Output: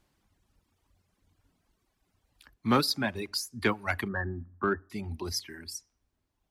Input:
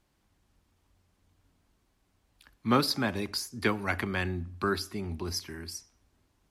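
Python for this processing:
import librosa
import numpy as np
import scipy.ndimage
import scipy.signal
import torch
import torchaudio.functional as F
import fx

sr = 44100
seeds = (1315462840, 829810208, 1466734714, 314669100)

y = fx.brickwall_lowpass(x, sr, high_hz=1900.0, at=(4.08, 4.9))
y = fx.dereverb_blind(y, sr, rt60_s=1.9)
y = 10.0 ** (-14.0 / 20.0) * np.tanh(y / 10.0 ** (-14.0 / 20.0))
y = y * 10.0 ** (1.5 / 20.0)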